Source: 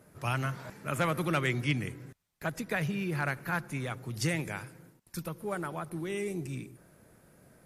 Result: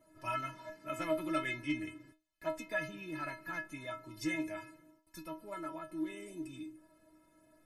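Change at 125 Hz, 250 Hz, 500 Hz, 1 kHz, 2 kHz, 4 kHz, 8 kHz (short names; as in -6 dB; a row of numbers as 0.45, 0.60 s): -18.0, -4.5, -4.5, -5.5, -6.0, -8.0, -10.0 dB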